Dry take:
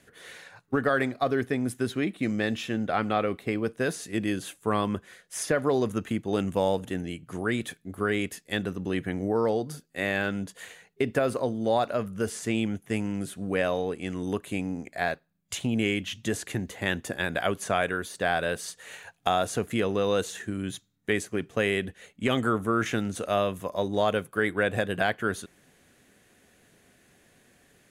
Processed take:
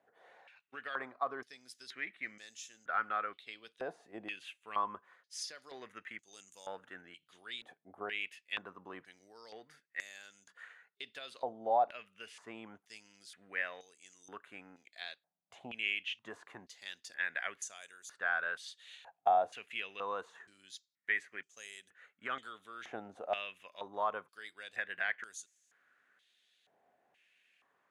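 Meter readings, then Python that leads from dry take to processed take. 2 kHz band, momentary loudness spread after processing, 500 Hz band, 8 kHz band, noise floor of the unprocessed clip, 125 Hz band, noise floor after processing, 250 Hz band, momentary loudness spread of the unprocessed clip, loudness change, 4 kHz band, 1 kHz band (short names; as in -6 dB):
-7.5 dB, 19 LU, -16.0 dB, -12.0 dB, -63 dBFS, -32.5 dB, -82 dBFS, -27.0 dB, 8 LU, -10.5 dB, -9.5 dB, -6.5 dB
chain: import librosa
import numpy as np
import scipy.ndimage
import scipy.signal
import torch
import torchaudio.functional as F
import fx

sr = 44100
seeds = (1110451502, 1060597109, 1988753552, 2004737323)

y = fx.filter_held_bandpass(x, sr, hz=2.1, low_hz=770.0, high_hz=6600.0)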